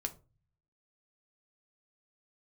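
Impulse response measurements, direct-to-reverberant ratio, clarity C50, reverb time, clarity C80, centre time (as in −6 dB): 5.5 dB, 17.0 dB, 0.35 s, 23.0 dB, 5 ms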